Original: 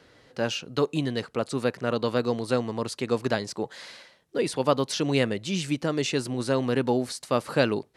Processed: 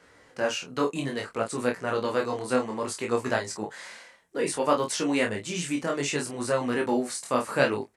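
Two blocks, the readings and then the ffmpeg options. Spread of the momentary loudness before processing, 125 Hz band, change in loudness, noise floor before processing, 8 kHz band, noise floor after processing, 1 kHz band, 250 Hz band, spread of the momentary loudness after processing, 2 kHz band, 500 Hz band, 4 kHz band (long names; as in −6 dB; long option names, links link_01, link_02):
7 LU, −6.5 dB, −1.0 dB, −59 dBFS, +3.5 dB, −57 dBFS, +2.0 dB, −2.0 dB, 8 LU, +2.5 dB, −1.0 dB, −3.0 dB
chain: -filter_complex "[0:a]equalizer=frequency=125:width_type=o:width=1:gain=-4,equalizer=frequency=1000:width_type=o:width=1:gain=4,equalizer=frequency=2000:width_type=o:width=1:gain=5,equalizer=frequency=4000:width_type=o:width=1:gain=-6,equalizer=frequency=8000:width_type=o:width=1:gain=9,flanger=delay=16.5:depth=7.5:speed=0.61,asplit=2[link_01][link_02];[link_02]adelay=28,volume=-5.5dB[link_03];[link_01][link_03]amix=inputs=2:normalize=0"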